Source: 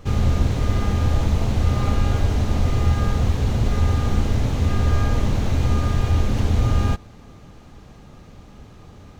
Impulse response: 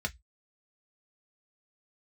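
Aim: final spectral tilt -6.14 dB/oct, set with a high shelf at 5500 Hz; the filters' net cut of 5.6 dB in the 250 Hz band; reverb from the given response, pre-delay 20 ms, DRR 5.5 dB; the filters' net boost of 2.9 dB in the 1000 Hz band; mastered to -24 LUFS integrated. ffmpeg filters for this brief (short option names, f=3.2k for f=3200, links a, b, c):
-filter_complex "[0:a]equalizer=f=250:t=o:g=-8,equalizer=f=1k:t=o:g=4,highshelf=f=5.5k:g=8.5,asplit=2[a][b];[1:a]atrim=start_sample=2205,adelay=20[c];[b][c]afir=irnorm=-1:irlink=0,volume=-10dB[d];[a][d]amix=inputs=2:normalize=0,volume=-7dB"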